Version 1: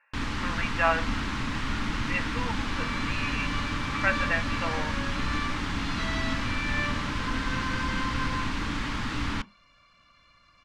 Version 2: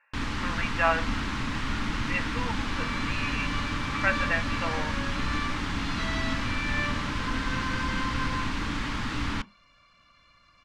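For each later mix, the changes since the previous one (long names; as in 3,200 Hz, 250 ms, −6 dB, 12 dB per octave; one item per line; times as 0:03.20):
nothing changed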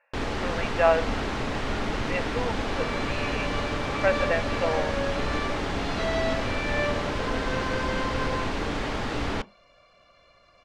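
speech: send −10.0 dB
master: add flat-topped bell 540 Hz +13.5 dB 1.3 octaves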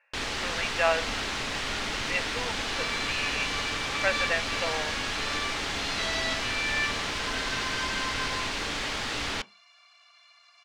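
second sound: add Butterworth high-pass 670 Hz 96 dB per octave
master: add tilt shelving filter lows −9 dB, about 1,500 Hz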